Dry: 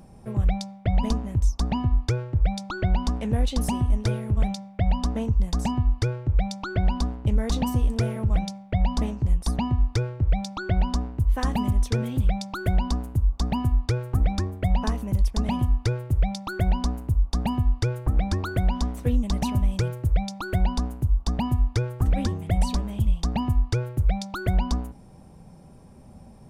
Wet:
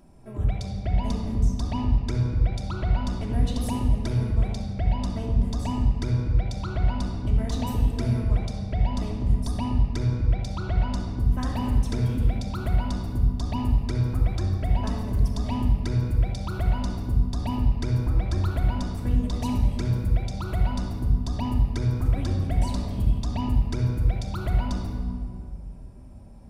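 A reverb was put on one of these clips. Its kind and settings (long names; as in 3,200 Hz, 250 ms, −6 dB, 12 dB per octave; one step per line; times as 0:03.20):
rectangular room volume 3,700 cubic metres, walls mixed, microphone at 2.9 metres
level −7 dB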